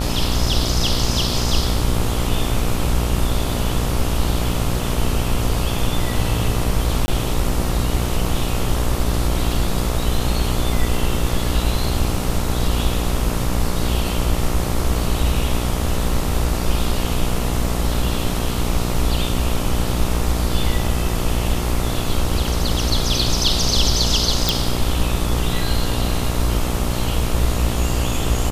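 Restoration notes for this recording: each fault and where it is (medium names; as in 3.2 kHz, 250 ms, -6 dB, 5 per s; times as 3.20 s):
buzz 60 Hz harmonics 23 -23 dBFS
7.06–7.08 s: dropout 20 ms
24.49 s: pop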